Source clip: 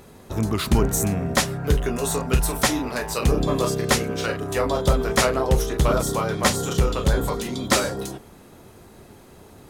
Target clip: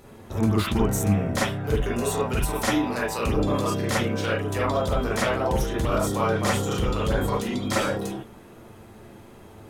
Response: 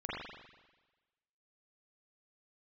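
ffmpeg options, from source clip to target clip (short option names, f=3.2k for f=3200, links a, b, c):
-filter_complex "[0:a]alimiter=limit=-14dB:level=0:latency=1:release=16[a];[1:a]atrim=start_sample=2205,atrim=end_sample=3528[b];[a][b]afir=irnorm=-1:irlink=0"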